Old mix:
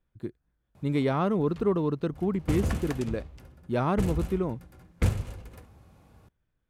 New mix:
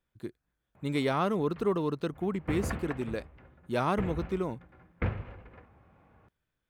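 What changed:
background: add LPF 2200 Hz 24 dB/oct; master: add tilt +2 dB/oct

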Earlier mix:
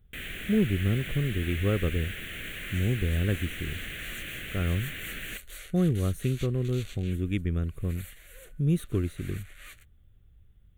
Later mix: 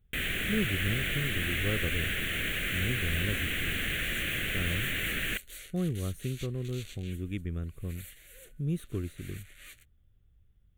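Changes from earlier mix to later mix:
speech -6.5 dB; first sound +6.5 dB; second sound: add bell 980 Hz -10 dB 1.4 oct

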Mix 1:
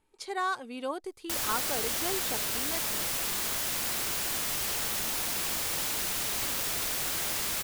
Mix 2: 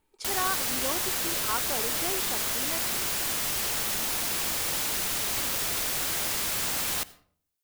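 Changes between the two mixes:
background: entry -1.05 s; reverb: on, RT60 0.55 s

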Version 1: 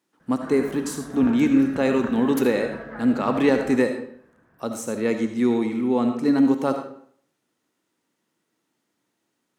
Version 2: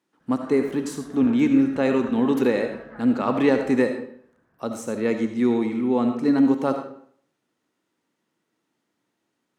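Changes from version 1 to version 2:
first sound -6.0 dB; second sound -5.0 dB; master: add high shelf 6200 Hz -7.5 dB

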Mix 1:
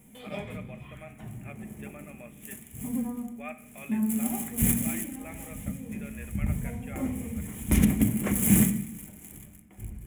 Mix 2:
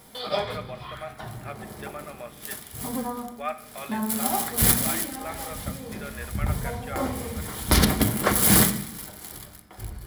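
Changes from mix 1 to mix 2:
background +3.0 dB; master: remove EQ curve 110 Hz 0 dB, 230 Hz +6 dB, 380 Hz -5 dB, 600 Hz -9 dB, 1400 Hz -15 dB, 2500 Hz 0 dB, 4600 Hz -27 dB, 6800 Hz -2 dB, 15000 Hz -5 dB

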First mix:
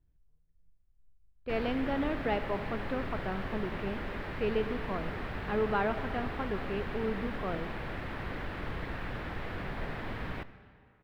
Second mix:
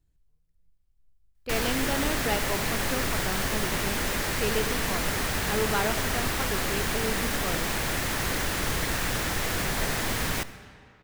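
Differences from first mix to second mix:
background +7.0 dB; master: remove air absorption 450 m

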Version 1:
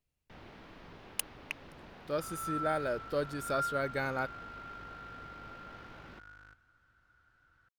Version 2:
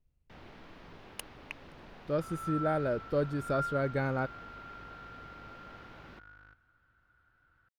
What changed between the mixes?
speech: add tilt -3 dB/oct; second sound: add air absorption 180 m

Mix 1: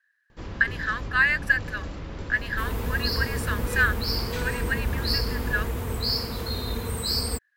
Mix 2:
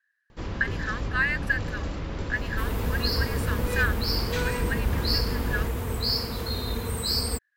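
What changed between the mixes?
speech -4.5 dB; first sound +3.5 dB

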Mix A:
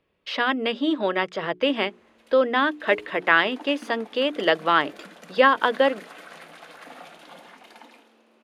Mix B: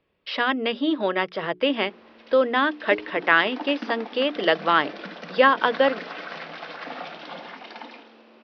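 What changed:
first sound +8.0 dB; second sound: add air absorption 160 m; master: add steep low-pass 5600 Hz 96 dB/oct

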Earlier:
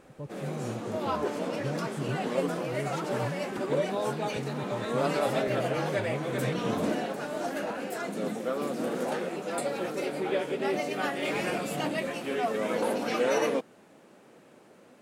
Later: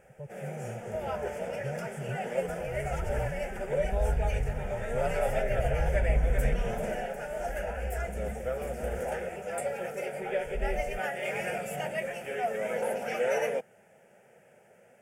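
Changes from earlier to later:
second sound: unmuted; master: add fixed phaser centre 1100 Hz, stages 6

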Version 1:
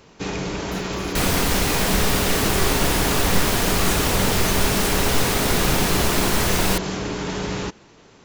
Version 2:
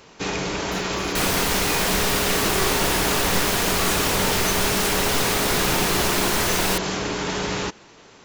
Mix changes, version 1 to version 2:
first sound +4.0 dB; master: add low shelf 370 Hz -7.5 dB

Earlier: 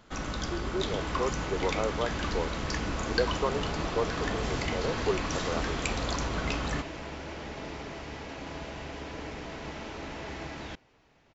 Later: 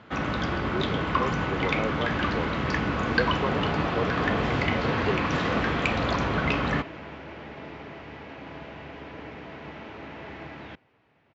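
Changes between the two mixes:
first sound +8.5 dB; master: add Chebyshev band-pass 100–2500 Hz, order 2

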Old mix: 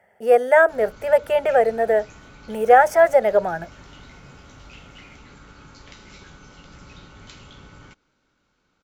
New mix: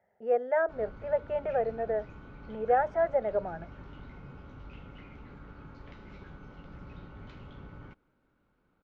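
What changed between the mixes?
speech -9.5 dB; master: add tape spacing loss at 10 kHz 44 dB

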